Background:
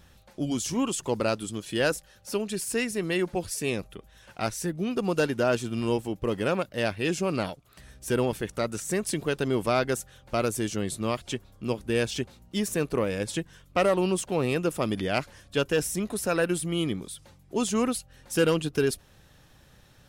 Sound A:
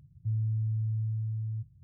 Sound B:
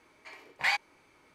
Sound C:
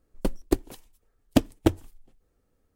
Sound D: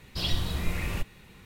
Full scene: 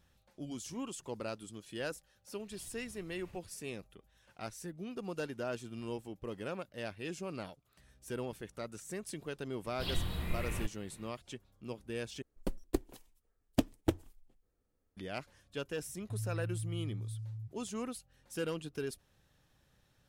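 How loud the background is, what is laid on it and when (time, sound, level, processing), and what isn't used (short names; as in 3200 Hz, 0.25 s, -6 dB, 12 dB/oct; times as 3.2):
background -14 dB
2.36 add D -16 dB + compressor, threshold -38 dBFS
9.64 add D -6.5 dB + bell 6000 Hz -12 dB 0.61 oct
12.22 replace with C -9.5 dB
15.85 add A -8.5 dB
not used: B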